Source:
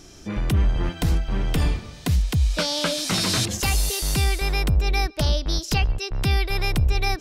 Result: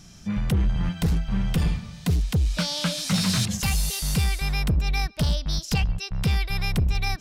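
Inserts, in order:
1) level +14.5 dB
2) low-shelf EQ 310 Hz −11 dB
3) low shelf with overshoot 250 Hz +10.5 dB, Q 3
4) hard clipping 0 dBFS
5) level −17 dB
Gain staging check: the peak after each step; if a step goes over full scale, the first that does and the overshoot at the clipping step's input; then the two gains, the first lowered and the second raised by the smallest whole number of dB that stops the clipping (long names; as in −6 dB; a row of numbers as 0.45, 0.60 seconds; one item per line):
+2.0, +2.0, +8.5, 0.0, −17.0 dBFS
step 1, 8.5 dB
step 1 +5.5 dB, step 5 −8 dB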